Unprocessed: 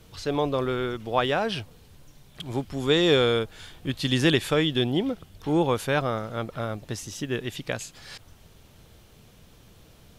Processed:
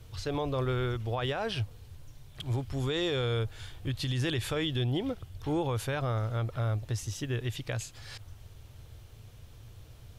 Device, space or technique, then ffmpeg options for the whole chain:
car stereo with a boomy subwoofer: -af "lowshelf=f=140:t=q:w=3:g=6.5,alimiter=limit=0.112:level=0:latency=1:release=60,volume=0.668"

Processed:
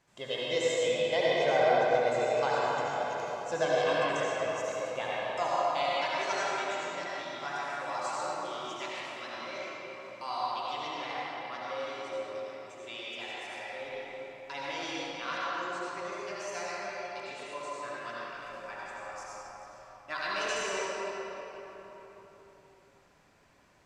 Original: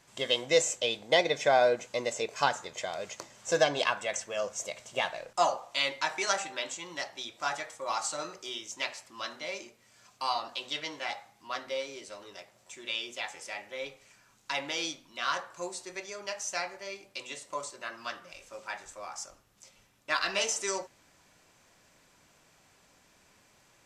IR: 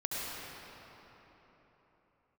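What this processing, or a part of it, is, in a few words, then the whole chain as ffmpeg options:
swimming-pool hall: -filter_complex "[1:a]atrim=start_sample=2205[s0];[0:a][s0]afir=irnorm=-1:irlink=0,highshelf=f=3300:g=-8,asettb=1/sr,asplit=3[s1][s2][s3];[s1]atrim=end=15.444[s4];[s2]atrim=start=15.44:end=16.12,asetpts=PTS-STARTPTS,afade=t=in:d=0.004:c=qsin,afade=t=out:st=0.676:d=0.004:c=qsin,lowpass=f=7900:w=0.5412,lowpass=f=7900:w=1.3066[s5];[s3]atrim=start=16.116[s6];[s4][s5]acrossfade=d=0.004:c1=hsin:c2=qsin[s7];[s7][s6]acrossfade=d=0.004:c1=qsin:c2=hsin,volume=0.631"

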